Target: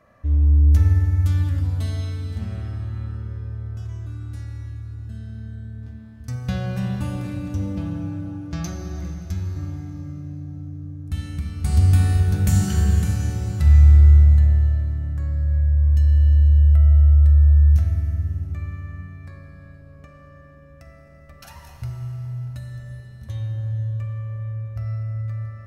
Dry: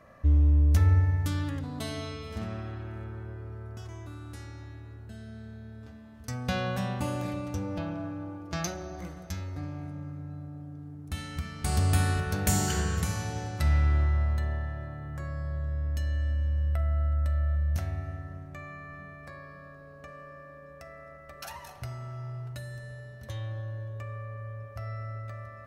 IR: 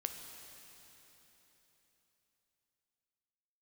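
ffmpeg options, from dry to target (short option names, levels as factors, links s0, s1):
-filter_complex "[1:a]atrim=start_sample=2205,asetrate=48510,aresample=44100[s0];[0:a][s0]afir=irnorm=-1:irlink=0,asubboost=boost=3.5:cutoff=250"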